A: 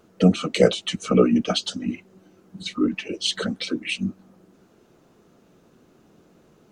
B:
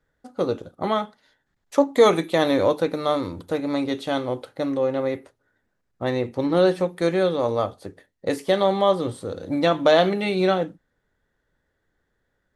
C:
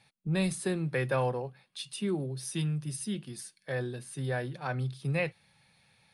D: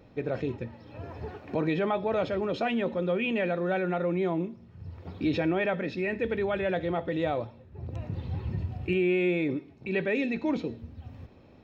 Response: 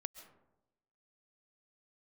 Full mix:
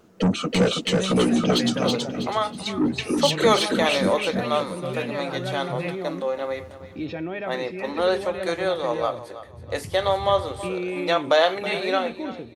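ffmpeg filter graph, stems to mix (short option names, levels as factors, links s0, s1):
-filter_complex "[0:a]asoftclip=type=tanh:threshold=0.15,volume=1.19,asplit=2[s0][s1];[s1]volume=0.708[s2];[1:a]highpass=590,adelay=1450,volume=1.12,asplit=2[s3][s4];[s4]volume=0.188[s5];[2:a]adelay=650,volume=0.794[s6];[3:a]adelay=1750,volume=0.631,asplit=2[s7][s8];[s8]volume=0.1[s9];[s2][s5][s9]amix=inputs=3:normalize=0,aecho=0:1:324|648|972|1296:1|0.3|0.09|0.027[s10];[s0][s3][s6][s7][s10]amix=inputs=5:normalize=0"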